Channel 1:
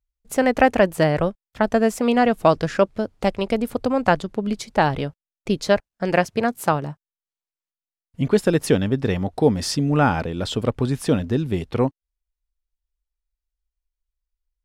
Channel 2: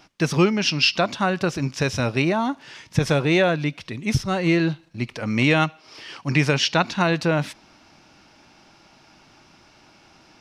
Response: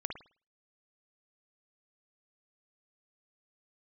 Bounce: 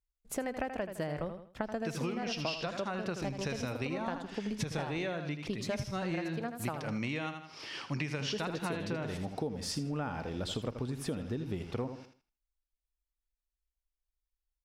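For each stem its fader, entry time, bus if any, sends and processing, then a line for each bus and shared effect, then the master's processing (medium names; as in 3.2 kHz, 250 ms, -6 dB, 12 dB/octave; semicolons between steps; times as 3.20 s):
-8.0 dB, 0.00 s, no send, echo send -10.5 dB, none
-4.0 dB, 1.65 s, no send, echo send -10 dB, none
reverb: none
echo: feedback delay 80 ms, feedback 26%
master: compression 10:1, threshold -32 dBFS, peak gain reduction 17 dB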